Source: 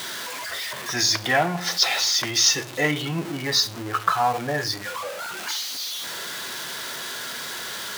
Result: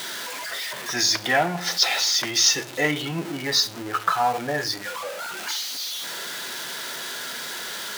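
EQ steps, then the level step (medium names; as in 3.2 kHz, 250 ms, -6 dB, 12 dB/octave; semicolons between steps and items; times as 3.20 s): high-pass 150 Hz 12 dB/octave; band-stop 1.1 kHz, Q 16; 0.0 dB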